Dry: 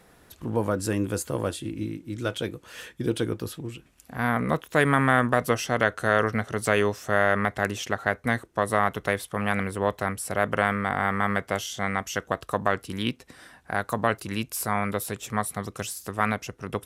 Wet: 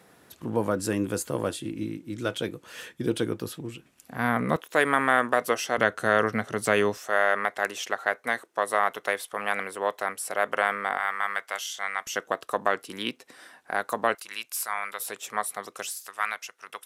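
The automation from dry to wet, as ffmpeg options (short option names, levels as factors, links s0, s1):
-af "asetnsamples=n=441:p=0,asendcmd='4.56 highpass f 350;5.78 highpass f 150;6.97 highpass f 480;10.98 highpass f 1000;12.07 highpass f 330;14.15 highpass f 1100;15 highpass f 510;15.89 highpass f 1200',highpass=130"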